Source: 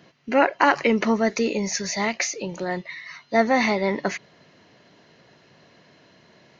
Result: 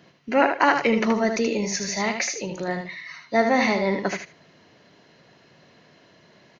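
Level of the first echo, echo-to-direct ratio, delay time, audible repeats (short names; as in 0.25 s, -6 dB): -6.5 dB, -6.5 dB, 77 ms, 2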